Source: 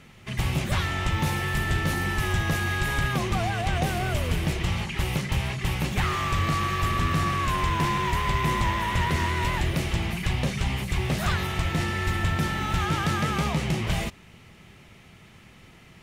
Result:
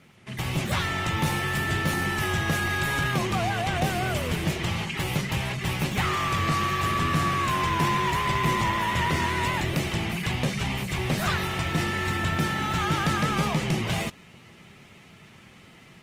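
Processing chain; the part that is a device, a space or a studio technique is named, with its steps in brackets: video call (high-pass 110 Hz 12 dB/octave; level rider gain up to 4 dB; trim -2.5 dB; Opus 20 kbps 48 kHz)

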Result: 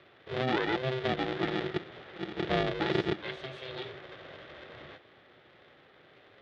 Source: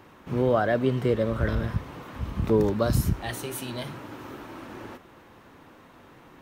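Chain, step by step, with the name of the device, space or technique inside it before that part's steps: ring modulator pedal into a guitar cabinet (polarity switched at an audio rate 260 Hz; cabinet simulation 110–4000 Hz, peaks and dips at 200 Hz -4 dB, 370 Hz +5 dB, 980 Hz -7 dB, 1.9 kHz +5 dB, 3.5 kHz +8 dB); trim -7 dB

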